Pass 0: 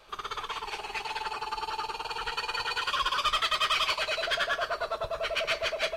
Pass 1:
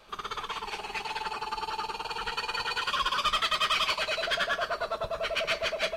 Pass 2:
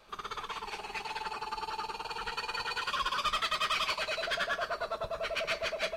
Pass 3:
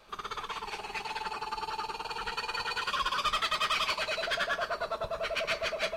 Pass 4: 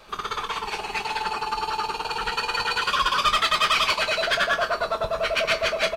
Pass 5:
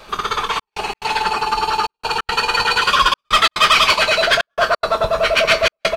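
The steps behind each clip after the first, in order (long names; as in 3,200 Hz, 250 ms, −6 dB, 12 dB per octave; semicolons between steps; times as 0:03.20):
parametric band 200 Hz +8.5 dB 0.64 octaves
parametric band 3,100 Hz −3.5 dB 0.21 octaves; level −3.5 dB
echo through a band-pass that steps 487 ms, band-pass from 150 Hz, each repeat 0.7 octaves, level −8.5 dB; level +1.5 dB
double-tracking delay 23 ms −12 dB; level +8.5 dB
gate pattern "xxxxxxx..xx.xxx" 177 BPM −60 dB; level +8.5 dB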